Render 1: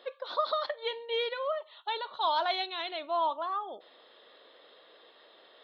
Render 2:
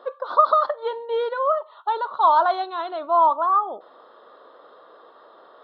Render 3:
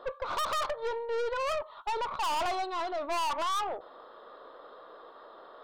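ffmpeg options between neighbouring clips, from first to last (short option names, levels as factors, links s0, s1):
-af "highshelf=f=1700:t=q:w=3:g=-10.5,volume=2.51"
-af "aeval=exprs='(tanh(28.2*val(0)+0.35)-tanh(0.35))/28.2':c=same"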